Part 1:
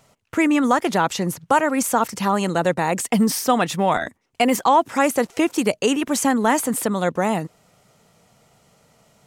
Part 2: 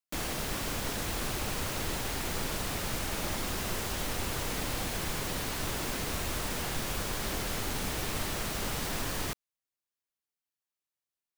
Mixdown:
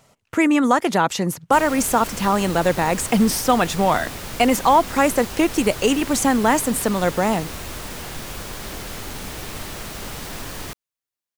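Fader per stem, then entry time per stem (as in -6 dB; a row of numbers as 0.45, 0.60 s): +1.0, +1.5 dB; 0.00, 1.40 s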